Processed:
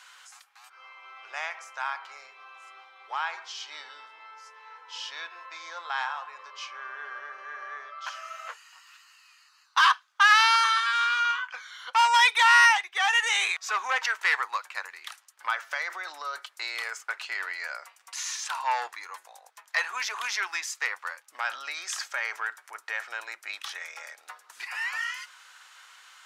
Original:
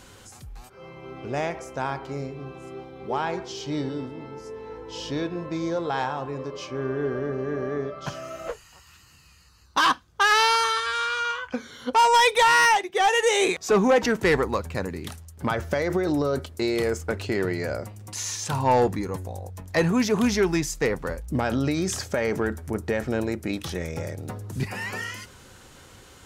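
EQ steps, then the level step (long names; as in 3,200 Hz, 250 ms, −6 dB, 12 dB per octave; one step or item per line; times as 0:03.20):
high-pass filter 1,100 Hz 24 dB per octave
low-pass filter 3,200 Hz 6 dB per octave
+3.5 dB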